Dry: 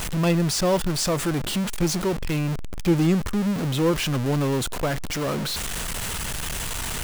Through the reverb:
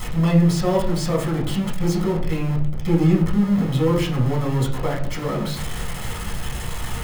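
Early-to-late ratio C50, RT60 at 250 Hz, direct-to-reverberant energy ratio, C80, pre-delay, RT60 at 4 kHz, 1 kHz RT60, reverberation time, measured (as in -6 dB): 7.5 dB, 0.70 s, -5.5 dB, 10.5 dB, 4 ms, 0.25 s, 0.50 s, 0.55 s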